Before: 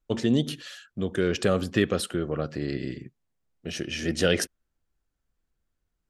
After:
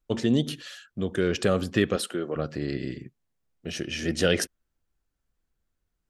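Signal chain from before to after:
0:01.96–0:02.36: high-pass filter 240 Hz 12 dB per octave

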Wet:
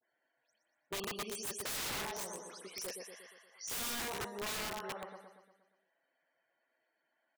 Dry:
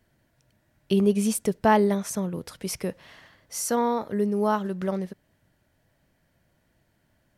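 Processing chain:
every frequency bin delayed by itself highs late, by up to 124 ms
high-pass filter 600 Hz 12 dB per octave
spectral peaks only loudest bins 64
repeating echo 118 ms, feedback 53%, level −5 dB
wrap-around overflow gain 27 dB
level −7 dB

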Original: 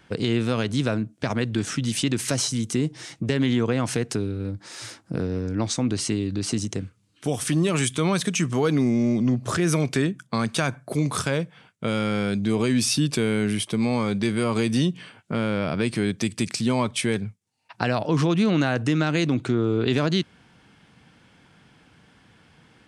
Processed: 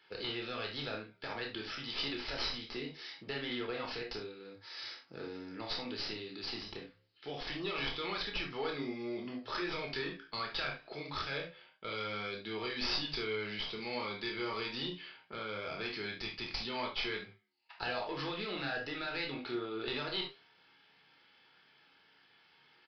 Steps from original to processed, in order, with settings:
high-pass filter 790 Hz 6 dB per octave
high-shelf EQ 3,700 Hz +9.5 dB
asymmetric clip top −24.5 dBFS
flanger 0.24 Hz, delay 9.1 ms, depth 8 ms, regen −85%
double-tracking delay 28 ms −7 dB
convolution reverb, pre-delay 3 ms, DRR 2 dB
downsampling to 11,025 Hz
level −7 dB

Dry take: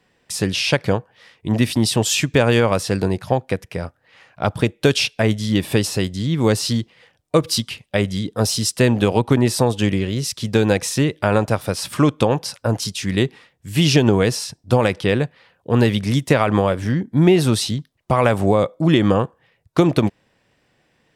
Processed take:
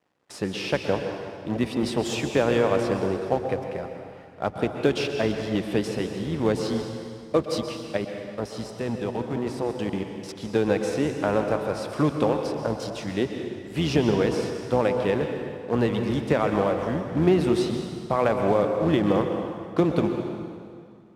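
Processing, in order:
sub-octave generator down 1 octave, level −5 dB
spectral tilt +2.5 dB per octave
0:07.97–0:10.29: output level in coarse steps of 24 dB
log-companded quantiser 4 bits
resonant band-pass 330 Hz, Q 0.53
convolution reverb RT60 2.2 s, pre-delay 113 ms, DRR 4.5 dB
level −2 dB

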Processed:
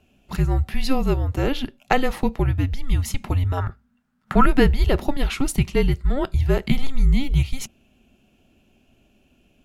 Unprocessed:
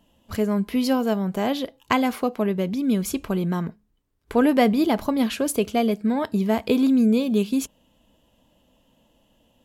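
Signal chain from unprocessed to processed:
0:03.57–0:04.46: parametric band 1,700 Hz +13.5 dB 0.72 octaves
frequency shifter −270 Hz
high-shelf EQ 7,400 Hz −7.5 dB
level +3 dB

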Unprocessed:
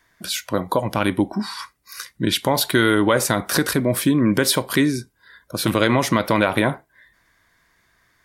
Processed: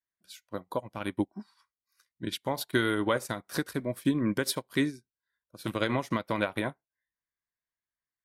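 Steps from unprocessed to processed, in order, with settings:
expander for the loud parts 2.5 to 1, over −34 dBFS
level −6.5 dB

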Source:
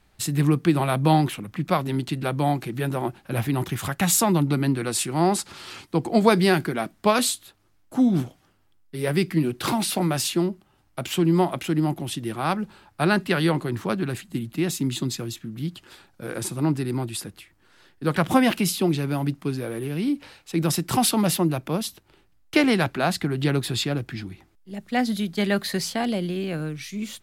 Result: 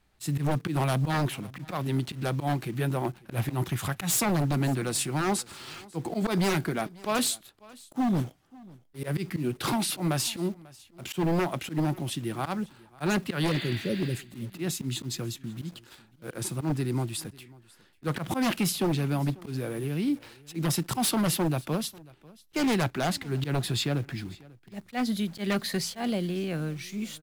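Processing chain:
volume swells 101 ms
dynamic equaliser 130 Hz, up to +3 dB, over −41 dBFS, Q 2.8
healed spectral selection 0:13.50–0:14.12, 610–5,200 Hz both
in parallel at −5.5 dB: bit reduction 7 bits
on the sum: wave folding −13 dBFS
on a send: single-tap delay 543 ms −23 dB
on the sum: level −7 dB

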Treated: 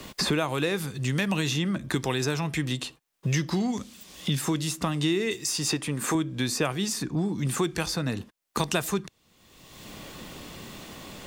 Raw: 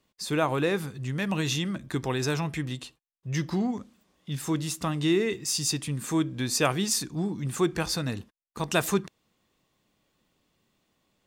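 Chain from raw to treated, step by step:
0:05.31–0:06.15: bass and treble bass −10 dB, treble +9 dB
multiband upward and downward compressor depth 100%

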